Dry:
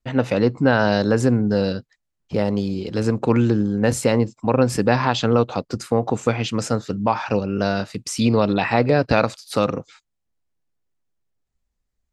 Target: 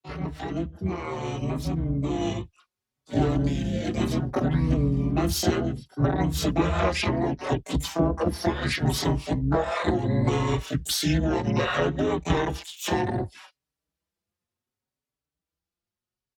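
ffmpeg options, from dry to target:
-filter_complex "[0:a]asetrate=32667,aresample=44100,highpass=f=67:w=0.5412,highpass=f=67:w=1.3066,acompressor=threshold=-21dB:ratio=16,afreqshift=-15,asplit=3[a][b][c];[b]asetrate=37084,aresample=44100,atempo=1.18921,volume=-3dB[d];[c]asetrate=88200,aresample=44100,atempo=0.5,volume=-4dB[e];[a][d][e]amix=inputs=3:normalize=0,dynaudnorm=f=340:g=13:m=11.5dB,asplit=2[f][g];[g]adelay=4.9,afreqshift=0.67[h];[f][h]amix=inputs=2:normalize=1,volume=-5dB"

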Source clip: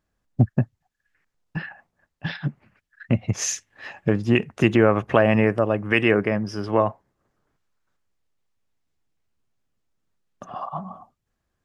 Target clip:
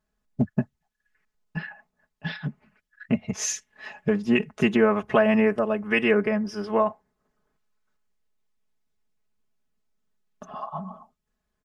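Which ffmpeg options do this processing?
-af "aecho=1:1:4.7:0.91,volume=-5dB"

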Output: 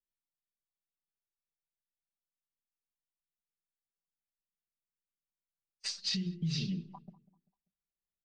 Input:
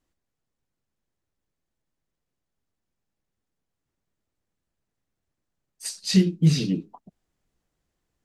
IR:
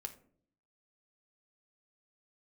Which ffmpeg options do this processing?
-filter_complex "[0:a]lowpass=f=5.2k:w=0.5412,lowpass=f=5.2k:w=1.3066,bandreject=f=50:t=h:w=6,bandreject=f=100:t=h:w=6,bandreject=f=150:t=h:w=6,bandreject=f=200:t=h:w=6,bandreject=f=250:t=h:w=6,bandreject=f=300:t=h:w=6,bandreject=f=350:t=h:w=6,agate=range=-25dB:threshold=-49dB:ratio=16:detection=peak,equalizer=f=450:w=0.58:g=-5,aecho=1:1:5.1:0.85,alimiter=limit=-22.5dB:level=0:latency=1:release=140,acrossover=split=150|3000[a][b][c];[b]acompressor=threshold=-46dB:ratio=2.5[d];[a][d][c]amix=inputs=3:normalize=0,asplit=2[e][f];[f]adelay=195,lowpass=f=1.5k:p=1,volume=-19dB,asplit=2[g][h];[h]adelay=195,lowpass=f=1.5k:p=1,volume=0.39,asplit=2[i][j];[j]adelay=195,lowpass=f=1.5k:p=1,volume=0.39[k];[g][i][k]amix=inputs=3:normalize=0[l];[e][l]amix=inputs=2:normalize=0"

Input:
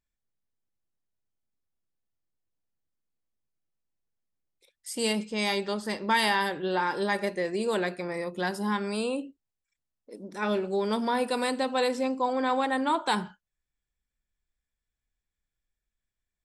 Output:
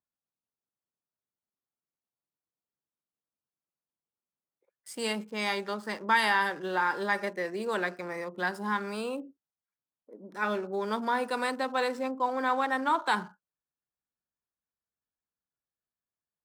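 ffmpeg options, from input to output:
-filter_complex "[0:a]highpass=130,equalizer=f=1.4k:w=1:g=9.5,acrossover=split=260|1300[a][b][c];[c]aeval=exprs='sgn(val(0))*max(abs(val(0))-0.00422,0)':c=same[d];[a][b][d]amix=inputs=3:normalize=0,volume=-5.5dB"

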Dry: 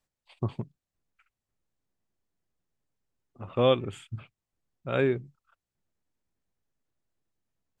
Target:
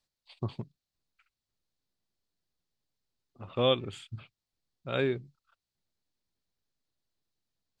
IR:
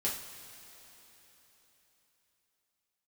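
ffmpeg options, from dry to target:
-af "equalizer=f=4.3k:w=1.6:g=12,volume=-4dB"

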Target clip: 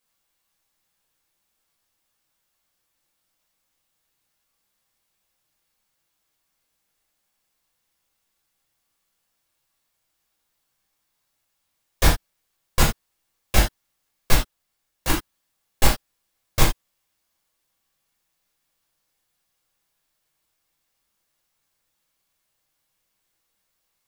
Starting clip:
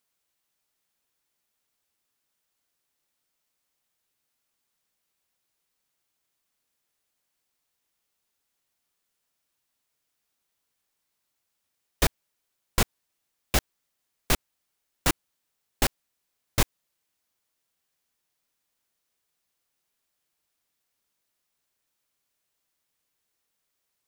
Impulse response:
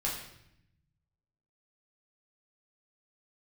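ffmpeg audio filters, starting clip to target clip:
-filter_complex "[0:a]asettb=1/sr,asplit=3[a][b][c];[a]atrim=end=14.334[d];[b]atrim=start=14.33:end=15.1,asetpts=PTS-STARTPTS,afade=t=in:d=0.004:c=qsin,afade=t=out:st=0.766:d=0.004:c=qsin,aeval=exprs='(tanh(11.2*val(0)+0.45)-tanh(0.45))/11.2':c=same[e];[c]atrim=start=15.096[f];[d][e]acrossfade=d=0.004:c1=hsin:c2=qsin[g];[g][f]acrossfade=d=0.004:c1=qsin:c2=hsin[h];[1:a]atrim=start_sample=2205,afade=t=out:st=0.14:d=0.01,atrim=end_sample=6615[i];[h][i]afir=irnorm=-1:irlink=0,volume=1dB"

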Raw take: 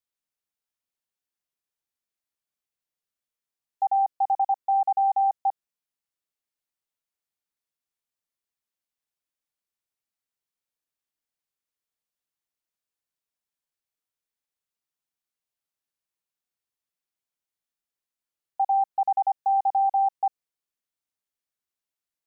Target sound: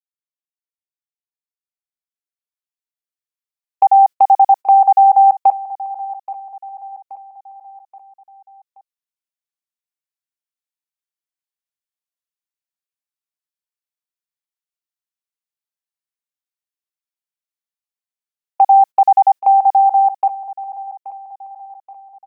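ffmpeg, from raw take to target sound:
-af "lowshelf=f=500:g=-10.5,agate=range=-21dB:threshold=-34dB:ratio=16:detection=peak,dynaudnorm=f=150:g=31:m=11.5dB,aecho=1:1:827|1654|2481|3308:0.15|0.0703|0.0331|0.0155,volume=5dB"

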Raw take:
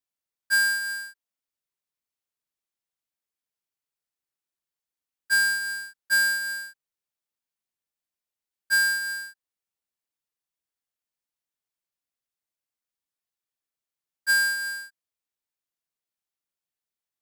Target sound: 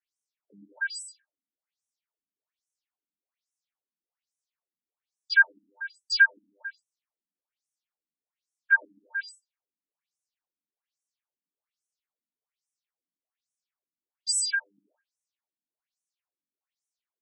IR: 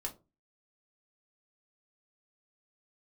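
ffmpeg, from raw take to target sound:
-filter_complex "[0:a]bandreject=f=60:t=h:w=6,bandreject=f=120:t=h:w=6,bandreject=f=180:t=h:w=6,bandreject=f=240:t=h:w=6,bandreject=f=300:t=h:w=6,bandreject=f=360:t=h:w=6,bandreject=f=420:t=h:w=6,bandreject=f=480:t=h:w=6,bandreject=f=540:t=h:w=6,bandreject=f=600:t=h:w=6,acrusher=bits=2:mode=log:mix=0:aa=0.000001,asplit=2[a][b];[1:a]atrim=start_sample=2205,adelay=63[c];[b][c]afir=irnorm=-1:irlink=0,volume=-7.5dB[d];[a][d]amix=inputs=2:normalize=0,afftfilt=real='re*between(b*sr/1024,220*pow(7800/220,0.5+0.5*sin(2*PI*1.2*pts/sr))/1.41,220*pow(7800/220,0.5+0.5*sin(2*PI*1.2*pts/sr))*1.41)':imag='im*between(b*sr/1024,220*pow(7800/220,0.5+0.5*sin(2*PI*1.2*pts/sr))/1.41,220*pow(7800/220,0.5+0.5*sin(2*PI*1.2*pts/sr))*1.41)':win_size=1024:overlap=0.75,volume=3.5dB"

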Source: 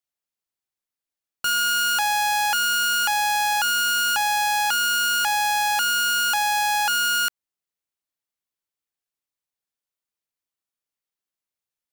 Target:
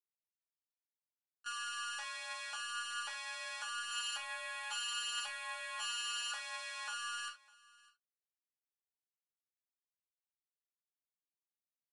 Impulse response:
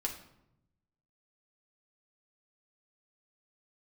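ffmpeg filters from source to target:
-filter_complex "[0:a]highpass=890,agate=range=-50dB:threshold=-20dB:ratio=16:detection=peak,asettb=1/sr,asplit=3[a][b][c];[a]atrim=end=3.904[d];[b]atrim=start=3.9:end=6.32,asetpts=PTS-STARTPTS,afade=t=in:d=0.004:c=qsin,afade=t=out:st=2.416:d=0.004:c=qsin,aecho=1:1:7.3:0.99,atrim=end_sample=106722[e];[c]atrim=start=6.316[f];[d][e]acrossfade=d=0.004:c1=hsin:c2=qsin[g];[g][f]acrossfade=d=0.004:c1=qsin:c2=hsin,acontrast=40,alimiter=level_in=16dB:limit=-24dB:level=0:latency=1,volume=-16dB,tremolo=f=250:d=0.947,flanger=delay=3.9:depth=9.2:regen=35:speed=0.19:shape=triangular,aecho=1:1:603:0.0708[h];[1:a]atrim=start_sample=2205,atrim=end_sample=3528[i];[h][i]afir=irnorm=-1:irlink=0,aresample=22050,aresample=44100,volume=16dB"

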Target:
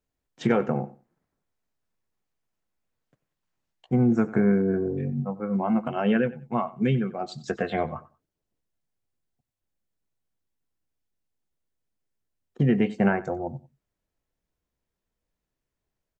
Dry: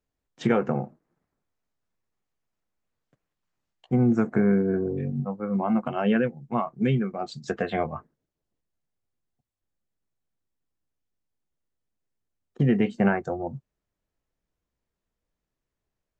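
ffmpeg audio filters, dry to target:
-filter_complex "[0:a]bandreject=f=1.2k:w=26,asplit=2[a][b];[b]aecho=0:1:93|186:0.119|0.0238[c];[a][c]amix=inputs=2:normalize=0"

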